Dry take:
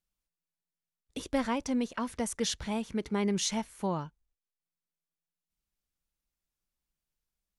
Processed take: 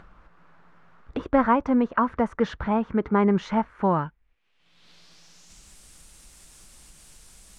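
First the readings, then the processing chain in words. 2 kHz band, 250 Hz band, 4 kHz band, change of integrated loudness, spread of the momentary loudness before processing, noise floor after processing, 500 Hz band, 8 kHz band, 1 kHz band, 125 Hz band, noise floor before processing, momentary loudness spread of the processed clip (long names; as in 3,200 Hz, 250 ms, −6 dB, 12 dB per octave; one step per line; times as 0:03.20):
+8.0 dB, +9.0 dB, −7.5 dB, +8.5 dB, 7 LU, −65 dBFS, +9.5 dB, below −10 dB, +13.0 dB, +8.5 dB, below −85 dBFS, 7 LU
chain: low-pass filter sweep 1,300 Hz → 8,800 Hz, 0:03.68–0:05.78
upward compression, threshold −36 dBFS
level +8.5 dB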